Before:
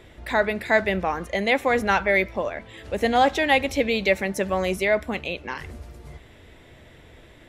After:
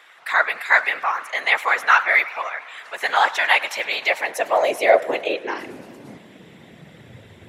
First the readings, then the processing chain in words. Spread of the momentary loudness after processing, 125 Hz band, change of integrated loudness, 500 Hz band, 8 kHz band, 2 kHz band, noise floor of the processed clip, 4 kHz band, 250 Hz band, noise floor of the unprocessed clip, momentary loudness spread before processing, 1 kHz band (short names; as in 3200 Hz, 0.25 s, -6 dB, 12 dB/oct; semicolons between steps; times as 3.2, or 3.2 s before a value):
13 LU, under -10 dB, +3.5 dB, 0.0 dB, +2.5 dB, +6.0 dB, -48 dBFS, +3.5 dB, -10.5 dB, -50 dBFS, 12 LU, +4.0 dB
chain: whisperiser; high-pass sweep 1200 Hz -> 97 Hz, 3.8–7.37; warbling echo 0.105 s, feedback 74%, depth 188 cents, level -20 dB; gain +2.5 dB